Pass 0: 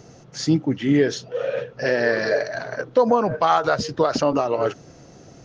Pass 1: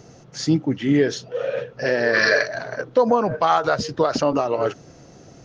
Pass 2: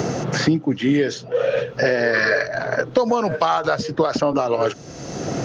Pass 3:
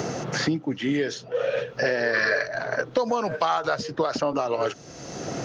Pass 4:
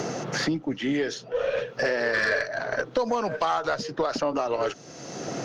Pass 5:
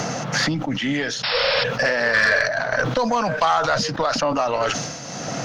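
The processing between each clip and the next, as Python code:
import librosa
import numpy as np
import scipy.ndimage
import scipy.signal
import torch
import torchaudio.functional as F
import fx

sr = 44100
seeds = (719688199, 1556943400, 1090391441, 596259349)

y1 = fx.spec_box(x, sr, start_s=2.14, length_s=0.32, low_hz=980.0, high_hz=6300.0, gain_db=10)
y2 = fx.band_squash(y1, sr, depth_pct=100)
y3 = fx.low_shelf(y2, sr, hz=460.0, db=-5.0)
y3 = F.gain(torch.from_numpy(y3), -3.5).numpy()
y4 = scipy.signal.sosfilt(scipy.signal.butter(2, 130.0, 'highpass', fs=sr, output='sos'), y3)
y4 = fx.tube_stage(y4, sr, drive_db=14.0, bias=0.25)
y5 = fx.spec_paint(y4, sr, seeds[0], shape='noise', start_s=1.23, length_s=0.41, low_hz=540.0, high_hz=5500.0, level_db=-30.0)
y5 = fx.peak_eq(y5, sr, hz=380.0, db=-14.5, octaves=0.63)
y5 = fx.sustainer(y5, sr, db_per_s=44.0)
y5 = F.gain(torch.from_numpy(y5), 7.5).numpy()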